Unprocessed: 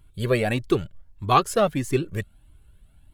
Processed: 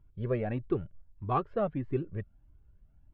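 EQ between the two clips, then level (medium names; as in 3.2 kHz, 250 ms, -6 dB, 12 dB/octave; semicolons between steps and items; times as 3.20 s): distance through air 410 m; tape spacing loss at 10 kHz 32 dB; -6.5 dB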